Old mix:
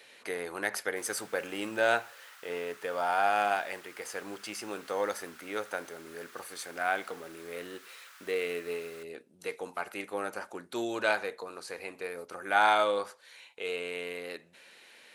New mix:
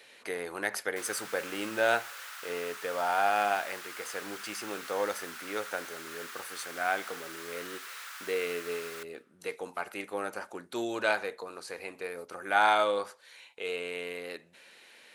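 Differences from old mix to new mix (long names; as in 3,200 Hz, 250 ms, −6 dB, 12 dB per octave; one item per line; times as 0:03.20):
background +9.0 dB
reverb: on, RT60 1.9 s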